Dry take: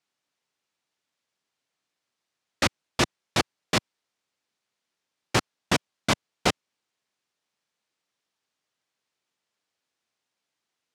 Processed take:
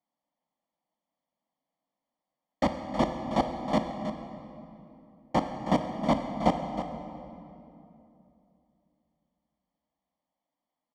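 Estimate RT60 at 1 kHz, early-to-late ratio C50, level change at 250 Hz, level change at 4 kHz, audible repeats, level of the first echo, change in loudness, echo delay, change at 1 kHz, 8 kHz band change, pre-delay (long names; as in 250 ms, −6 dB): 2.7 s, 5.0 dB, +3.5 dB, −13.5 dB, 1, −10.5 dB, −3.0 dB, 318 ms, +2.0 dB, −18.5 dB, 21 ms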